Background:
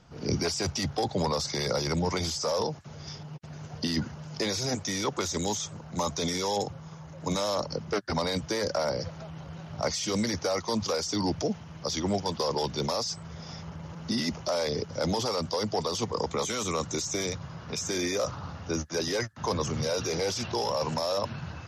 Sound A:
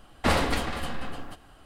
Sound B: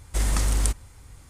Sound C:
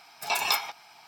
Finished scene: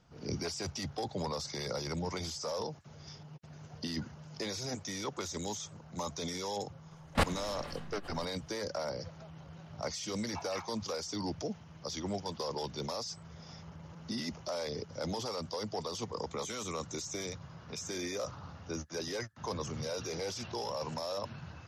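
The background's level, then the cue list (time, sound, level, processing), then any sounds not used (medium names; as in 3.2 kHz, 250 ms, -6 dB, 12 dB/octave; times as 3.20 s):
background -8.5 dB
6.91 s: add A -3 dB + level held to a coarse grid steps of 21 dB
10.05 s: add C -11 dB + LFO band-pass saw down 4.2 Hz 280–2100 Hz
not used: B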